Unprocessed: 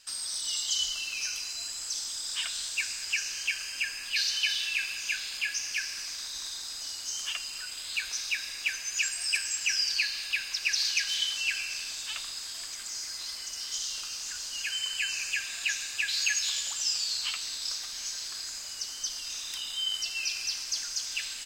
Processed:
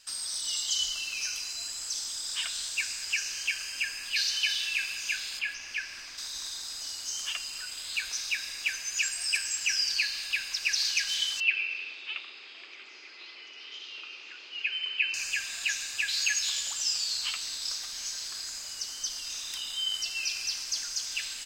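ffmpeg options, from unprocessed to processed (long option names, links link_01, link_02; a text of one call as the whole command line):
ffmpeg -i in.wav -filter_complex "[0:a]asettb=1/sr,asplit=3[link_01][link_02][link_03];[link_01]atrim=end=5.394[link_04];[link_02]atrim=start=5.39:end=6.18,asetpts=PTS-STARTPTS,afade=type=in:duration=0.004:curve=qsin,afade=type=out:start_time=0.786:duration=0.004:curve=qsin,acrossover=split=3600[link_05][link_06];[link_06]acompressor=threshold=-48dB:ratio=4:attack=1:release=60[link_07];[link_05][link_07]amix=inputs=2:normalize=0[link_08];[link_03]atrim=start=6.176[link_09];[link_04][link_08]acrossfade=duration=0.004:curve1=hsin:curve2=qsin[link_10];[link_10][link_09]acrossfade=duration=0.004:curve1=qsin:curve2=hsin,asettb=1/sr,asplit=3[link_11][link_12][link_13];[link_11]atrim=end=11.404[link_14];[link_12]atrim=start=11.4:end=15.14,asetpts=PTS-STARTPTS,afade=type=in:duration=0.004:curve=qsin,afade=type=out:start_time=3.736:duration=0.004:curve=qsin,highpass=frequency=280:width=0.5412,highpass=frequency=280:width=1.3066,equalizer=frequency=390:width_type=q:width=4:gain=8,equalizer=frequency=670:width_type=q:width=4:gain=-5,equalizer=frequency=1000:width_type=q:width=4:gain=-5,equalizer=frequency=1600:width_type=q:width=4:gain=-7,equalizer=frequency=2500:width_type=q:width=4:gain=8,lowpass=frequency=3200:width=0.5412,lowpass=frequency=3200:width=1.3066[link_15];[link_13]atrim=start=15.136[link_16];[link_14][link_15]acrossfade=duration=0.004:curve1=hsin:curve2=qsin[link_17];[link_17][link_16]acrossfade=duration=0.004:curve1=qsin:curve2=hsin" out.wav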